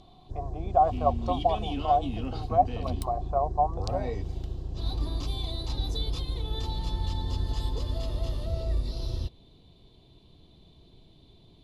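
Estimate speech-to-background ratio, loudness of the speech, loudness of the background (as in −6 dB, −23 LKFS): 5.0 dB, −28.5 LKFS, −33.5 LKFS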